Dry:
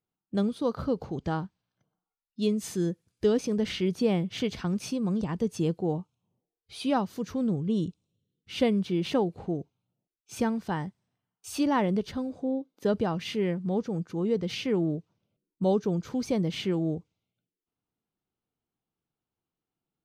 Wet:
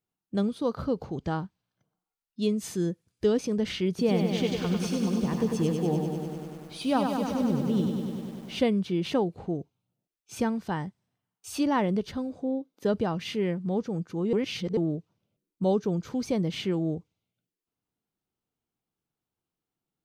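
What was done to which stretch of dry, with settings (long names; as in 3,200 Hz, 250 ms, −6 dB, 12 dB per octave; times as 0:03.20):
0:03.89–0:08.60: feedback echo at a low word length 98 ms, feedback 80%, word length 9 bits, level −5 dB
0:14.33–0:14.77: reverse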